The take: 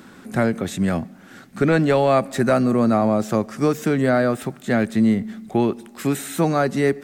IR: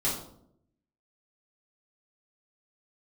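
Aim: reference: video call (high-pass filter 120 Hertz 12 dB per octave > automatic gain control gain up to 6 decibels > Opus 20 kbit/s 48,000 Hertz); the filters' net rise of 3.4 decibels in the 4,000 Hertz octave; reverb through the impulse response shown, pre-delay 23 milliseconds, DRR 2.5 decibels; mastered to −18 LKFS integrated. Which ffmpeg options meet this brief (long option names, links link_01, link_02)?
-filter_complex "[0:a]equalizer=frequency=4000:width_type=o:gain=4,asplit=2[link_01][link_02];[1:a]atrim=start_sample=2205,adelay=23[link_03];[link_02][link_03]afir=irnorm=-1:irlink=0,volume=-11dB[link_04];[link_01][link_04]amix=inputs=2:normalize=0,highpass=120,dynaudnorm=maxgain=6dB" -ar 48000 -c:a libopus -b:a 20k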